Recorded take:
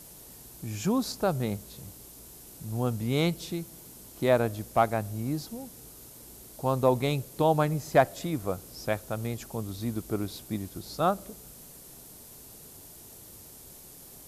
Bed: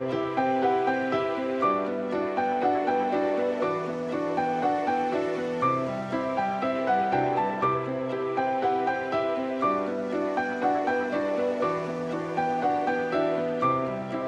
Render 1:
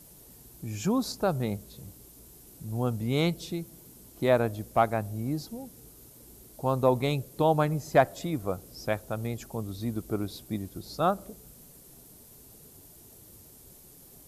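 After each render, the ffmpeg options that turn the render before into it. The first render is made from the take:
-af "afftdn=nr=6:nf=-49"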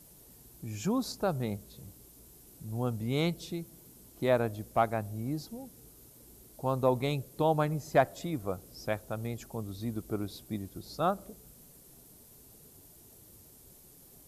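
-af "volume=0.668"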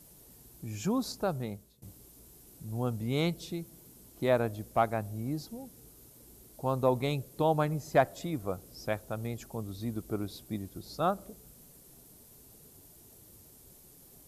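-filter_complex "[0:a]asplit=2[s0][s1];[s0]atrim=end=1.82,asetpts=PTS-STARTPTS,afade=t=out:st=1.02:d=0.8:c=qsin:silence=0.0794328[s2];[s1]atrim=start=1.82,asetpts=PTS-STARTPTS,afade=t=in:d=0.004:c=hsin:silence=0.0794328[s3];[s2][s3]concat=n=2:v=0:a=1"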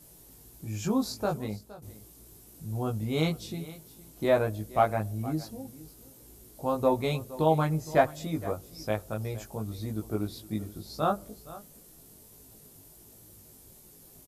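-filter_complex "[0:a]asplit=2[s0][s1];[s1]adelay=19,volume=0.794[s2];[s0][s2]amix=inputs=2:normalize=0,aecho=1:1:466:0.126"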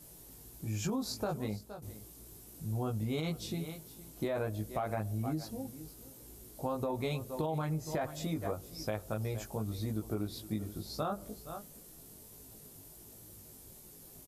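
-af "alimiter=limit=0.0891:level=0:latency=1:release=19,acompressor=threshold=0.0282:ratio=6"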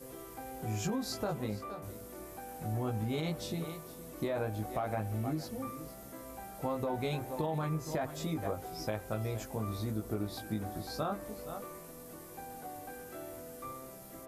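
-filter_complex "[1:a]volume=0.0944[s0];[0:a][s0]amix=inputs=2:normalize=0"

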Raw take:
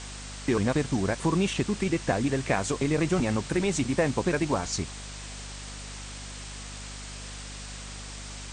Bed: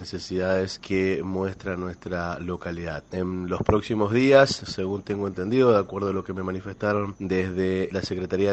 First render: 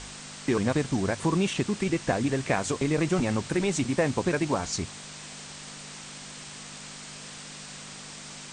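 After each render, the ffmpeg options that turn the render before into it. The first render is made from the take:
-af "bandreject=f=50:t=h:w=4,bandreject=f=100:t=h:w=4"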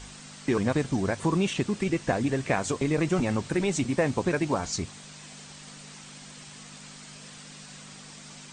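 -af "afftdn=nr=6:nf=-43"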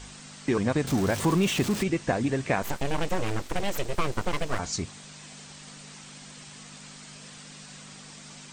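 -filter_complex "[0:a]asettb=1/sr,asplit=3[s0][s1][s2];[s0]atrim=end=0.874[s3];[s1]atrim=start=0.87:end=1.83,asetpts=PTS-STARTPTS,afade=t=in:d=0.004:c=qsin,afade=t=out:st=0.956:d=0.004:c=qsin,aeval=exprs='val(0)+0.5*0.0335*sgn(val(0))':c=same[s4];[s2]atrim=start=1.826[s5];[s3][s4]acrossfade=d=0.004:c1=hsin:c2=qsin[s6];[s6][s5]acrossfade=d=0.004:c1=qsin:c2=hsin,asettb=1/sr,asplit=3[s7][s8][s9];[s7]atrim=end=2.624[s10];[s8]atrim=start=2.62:end=4.59,asetpts=PTS-STARTPTS,afade=t=in:d=0.004:c=qsin,afade=t=out:st=1.966:d=0.004:c=qsin,aeval=exprs='abs(val(0))':c=same[s11];[s9]atrim=start=4.586[s12];[s10][s11]acrossfade=d=0.004:c1=hsin:c2=qsin[s13];[s13][s12]acrossfade=d=0.004:c1=qsin:c2=hsin"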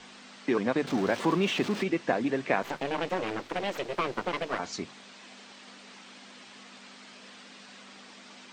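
-filter_complex "[0:a]acrossover=split=190 4900:gain=0.0794 1 0.126[s0][s1][s2];[s0][s1][s2]amix=inputs=3:normalize=0,bandreject=f=50:t=h:w=6,bandreject=f=100:t=h:w=6,bandreject=f=150:t=h:w=6"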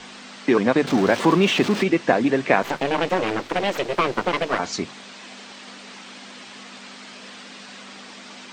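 -af "volume=2.82"

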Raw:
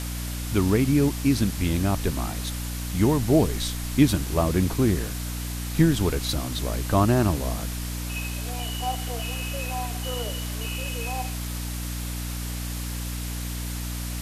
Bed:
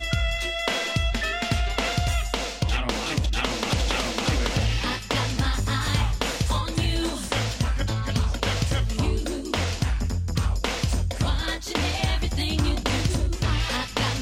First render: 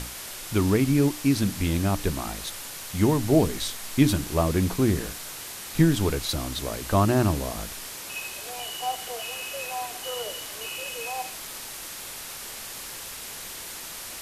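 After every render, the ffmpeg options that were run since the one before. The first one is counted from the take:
-af "bandreject=f=60:t=h:w=6,bandreject=f=120:t=h:w=6,bandreject=f=180:t=h:w=6,bandreject=f=240:t=h:w=6,bandreject=f=300:t=h:w=6"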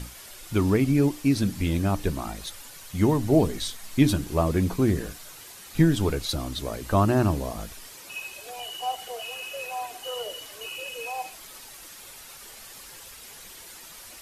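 -af "afftdn=nr=9:nf=-38"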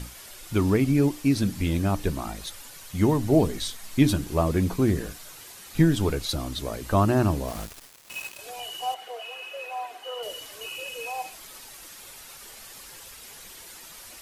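-filter_complex "[0:a]asettb=1/sr,asplit=3[s0][s1][s2];[s0]atrim=end=7.484[s3];[s1]atrim=start=7.48:end=8.39,asetpts=PTS-STARTPTS,afade=t=in:d=0.004:c=qsin,afade=t=out:st=0.906:d=0.004:c=qsin,acrusher=bits=5:mix=0:aa=0.5[s4];[s2]atrim=start=8.386[s5];[s3][s4]acrossfade=d=0.004:c1=hsin:c2=qsin[s6];[s6][s5]acrossfade=d=0.004:c1=qsin:c2=hsin,asettb=1/sr,asplit=3[s7][s8][s9];[s7]atrim=end=8.944[s10];[s8]atrim=start=8.94:end=10.23,asetpts=PTS-STARTPTS,afade=t=in:d=0.004:c=qsin,afade=t=out:st=1.286:d=0.004:c=qsin,bass=f=250:g=-15,treble=f=4000:g=-12[s11];[s9]atrim=start=10.226[s12];[s10][s11]acrossfade=d=0.004:c1=hsin:c2=qsin[s13];[s13][s12]acrossfade=d=0.004:c1=qsin:c2=hsin"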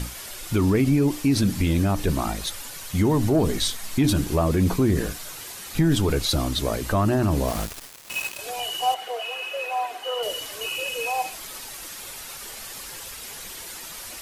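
-af "acontrast=81,alimiter=limit=0.251:level=0:latency=1:release=44"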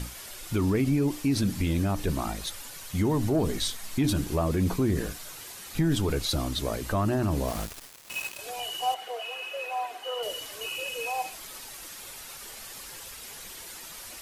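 -af "volume=0.562"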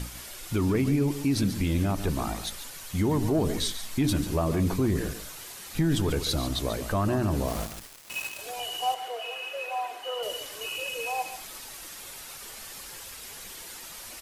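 -af "aecho=1:1:141:0.282"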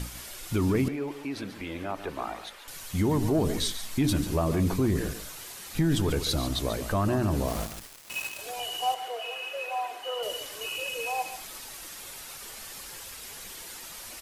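-filter_complex "[0:a]asettb=1/sr,asplit=3[s0][s1][s2];[s0]atrim=end=0.884[s3];[s1]atrim=start=0.88:end=2.68,asetpts=PTS-STARTPTS,afade=t=in:d=0.004:c=qsin,afade=t=out:st=1.796:d=0.004:c=qsin,acrossover=split=360 3200:gain=0.126 1 0.178[s4][s5][s6];[s4][s5][s6]amix=inputs=3:normalize=0[s7];[s2]atrim=start=2.676[s8];[s3][s7]acrossfade=d=0.004:c1=hsin:c2=qsin[s9];[s9][s8]acrossfade=d=0.004:c1=qsin:c2=hsin"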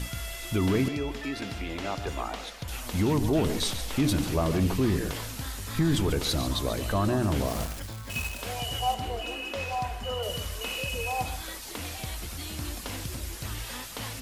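-filter_complex "[1:a]volume=0.224[s0];[0:a][s0]amix=inputs=2:normalize=0"

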